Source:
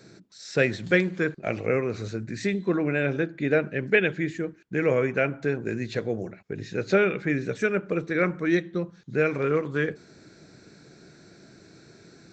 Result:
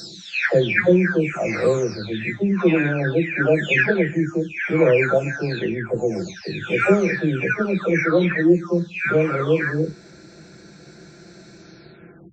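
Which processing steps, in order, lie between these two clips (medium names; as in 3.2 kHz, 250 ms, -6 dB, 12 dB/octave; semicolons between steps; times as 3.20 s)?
delay that grows with frequency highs early, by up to 754 ms; trim +8.5 dB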